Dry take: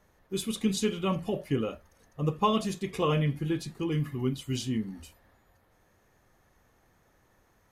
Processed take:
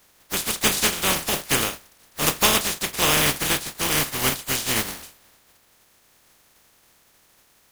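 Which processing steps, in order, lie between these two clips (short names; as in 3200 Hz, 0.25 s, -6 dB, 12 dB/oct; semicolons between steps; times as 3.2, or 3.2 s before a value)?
spectral contrast lowered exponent 0.21; gain +7 dB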